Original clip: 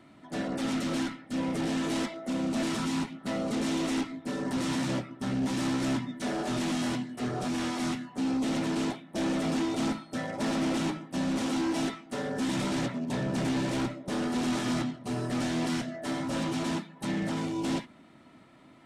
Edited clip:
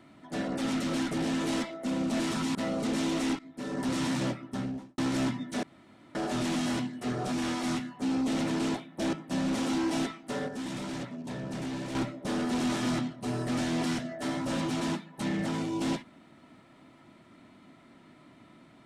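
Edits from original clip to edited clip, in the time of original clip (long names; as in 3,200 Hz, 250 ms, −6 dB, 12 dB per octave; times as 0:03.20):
0:01.11–0:01.54: remove
0:02.98–0:03.23: remove
0:04.07–0:04.49: fade in, from −14.5 dB
0:05.13–0:05.66: fade out and dull
0:06.31: splice in room tone 0.52 s
0:09.29–0:10.96: remove
0:12.31–0:13.78: clip gain −6.5 dB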